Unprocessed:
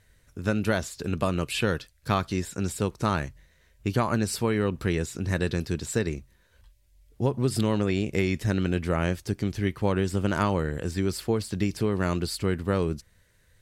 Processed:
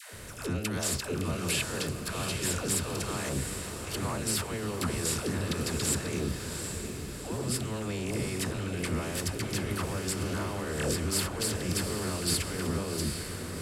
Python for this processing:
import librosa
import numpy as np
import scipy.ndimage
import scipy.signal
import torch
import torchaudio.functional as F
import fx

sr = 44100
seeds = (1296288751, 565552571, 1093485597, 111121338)

p1 = fx.bin_compress(x, sr, power=0.6)
p2 = fx.peak_eq(p1, sr, hz=11000.0, db=5.5, octaves=1.3)
p3 = fx.over_compress(p2, sr, threshold_db=-28.0, ratio=-1.0)
p4 = fx.dispersion(p3, sr, late='lows', ms=139.0, hz=540.0)
p5 = p4 + fx.echo_diffused(p4, sr, ms=767, feedback_pct=49, wet_db=-6.5, dry=0)
y = p5 * 10.0 ** (-4.5 / 20.0)